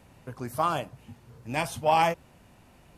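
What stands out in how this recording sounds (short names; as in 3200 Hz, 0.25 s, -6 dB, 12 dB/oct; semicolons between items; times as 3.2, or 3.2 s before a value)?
noise floor -57 dBFS; spectral tilt -4.5 dB/oct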